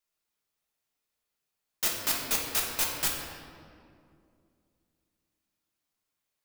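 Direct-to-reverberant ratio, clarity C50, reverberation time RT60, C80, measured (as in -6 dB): -2.5 dB, 2.0 dB, 2.4 s, 4.0 dB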